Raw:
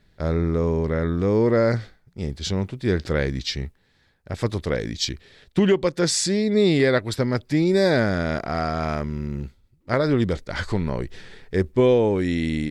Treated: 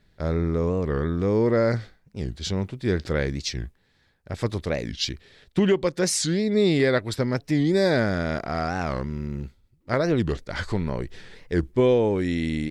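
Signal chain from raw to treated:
wow of a warped record 45 rpm, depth 250 cents
level −2 dB

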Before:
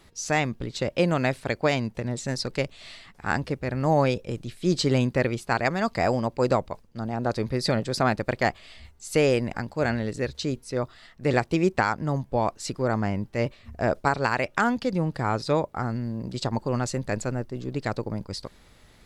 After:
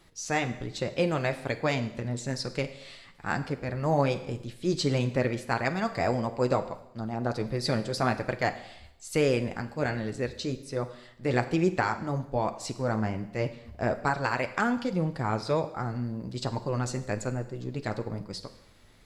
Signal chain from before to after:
four-comb reverb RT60 0.82 s, combs from 33 ms, DRR 11.5 dB
flanger 1.2 Hz, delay 5.5 ms, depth 4.4 ms, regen −45%

